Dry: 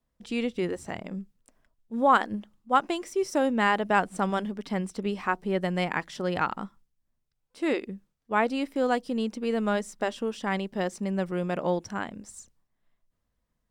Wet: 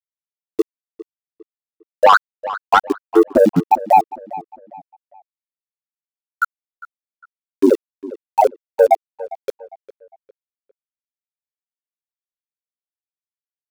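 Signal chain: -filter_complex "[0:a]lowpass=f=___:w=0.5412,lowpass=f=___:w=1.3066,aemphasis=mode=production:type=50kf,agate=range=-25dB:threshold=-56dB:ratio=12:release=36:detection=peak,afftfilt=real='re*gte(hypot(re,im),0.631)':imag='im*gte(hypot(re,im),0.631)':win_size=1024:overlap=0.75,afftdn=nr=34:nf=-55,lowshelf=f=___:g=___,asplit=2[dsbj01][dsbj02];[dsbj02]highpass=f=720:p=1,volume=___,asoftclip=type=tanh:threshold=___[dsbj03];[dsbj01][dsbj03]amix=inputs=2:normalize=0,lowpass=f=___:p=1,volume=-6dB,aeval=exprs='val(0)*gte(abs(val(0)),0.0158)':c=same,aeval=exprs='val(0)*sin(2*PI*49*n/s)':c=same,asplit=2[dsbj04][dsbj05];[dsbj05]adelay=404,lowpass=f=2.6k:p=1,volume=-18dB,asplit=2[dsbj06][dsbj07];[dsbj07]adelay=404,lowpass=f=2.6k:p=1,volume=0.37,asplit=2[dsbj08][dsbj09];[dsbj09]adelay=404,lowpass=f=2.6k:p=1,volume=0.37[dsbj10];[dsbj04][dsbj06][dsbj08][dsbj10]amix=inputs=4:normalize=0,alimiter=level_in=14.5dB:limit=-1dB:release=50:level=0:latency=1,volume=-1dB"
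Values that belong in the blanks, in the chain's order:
4.1k, 4.1k, 270, 9.5, 19dB, -9.5dB, 2.7k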